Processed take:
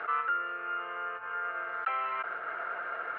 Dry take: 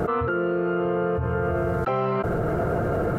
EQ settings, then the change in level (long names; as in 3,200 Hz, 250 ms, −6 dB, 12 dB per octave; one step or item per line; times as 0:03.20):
flat-topped band-pass 2,000 Hz, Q 1.1
high-frequency loss of the air 170 metres
+2.5 dB